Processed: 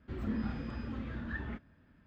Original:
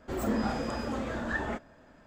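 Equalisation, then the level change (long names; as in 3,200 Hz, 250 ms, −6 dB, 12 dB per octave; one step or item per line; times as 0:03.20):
high-pass filter 52 Hz
high-frequency loss of the air 340 metres
guitar amp tone stack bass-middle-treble 6-0-2
+14.0 dB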